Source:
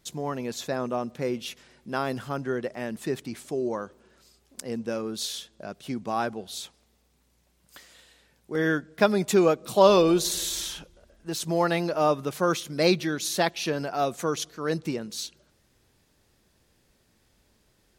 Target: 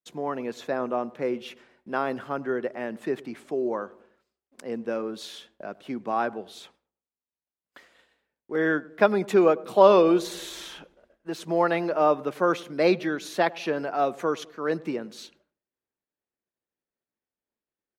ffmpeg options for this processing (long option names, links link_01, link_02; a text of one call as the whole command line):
ffmpeg -i in.wav -filter_complex "[0:a]acrossover=split=210 2800:gain=0.178 1 0.178[link_01][link_02][link_03];[link_01][link_02][link_03]amix=inputs=3:normalize=0,agate=range=-33dB:threshold=-54dB:ratio=3:detection=peak,asplit=2[link_04][link_05];[link_05]adelay=101,lowpass=frequency=930:poles=1,volume=-19dB,asplit=2[link_06][link_07];[link_07]adelay=101,lowpass=frequency=930:poles=1,volume=0.42,asplit=2[link_08][link_09];[link_09]adelay=101,lowpass=frequency=930:poles=1,volume=0.42[link_10];[link_06][link_08][link_10]amix=inputs=3:normalize=0[link_11];[link_04][link_11]amix=inputs=2:normalize=0,volume=2dB" out.wav